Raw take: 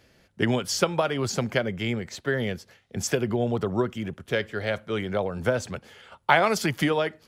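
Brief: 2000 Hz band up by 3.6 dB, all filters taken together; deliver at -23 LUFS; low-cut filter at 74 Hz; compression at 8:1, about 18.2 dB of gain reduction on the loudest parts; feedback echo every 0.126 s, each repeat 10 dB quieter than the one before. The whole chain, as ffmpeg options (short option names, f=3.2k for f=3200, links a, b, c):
-af "highpass=74,equalizer=f=2k:t=o:g=4.5,acompressor=threshold=-34dB:ratio=8,aecho=1:1:126|252|378|504:0.316|0.101|0.0324|0.0104,volume=15dB"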